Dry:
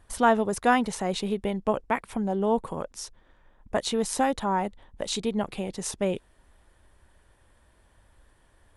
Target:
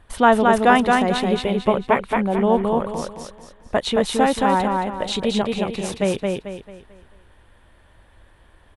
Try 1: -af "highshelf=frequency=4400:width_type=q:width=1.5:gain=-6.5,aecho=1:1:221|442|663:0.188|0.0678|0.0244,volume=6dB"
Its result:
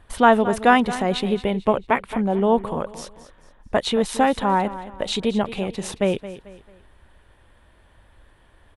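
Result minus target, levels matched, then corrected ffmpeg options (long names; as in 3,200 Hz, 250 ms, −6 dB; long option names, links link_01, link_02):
echo-to-direct −11.5 dB
-af "highshelf=frequency=4400:width_type=q:width=1.5:gain=-6.5,aecho=1:1:221|442|663|884|1105:0.708|0.255|0.0917|0.033|0.0119,volume=6dB"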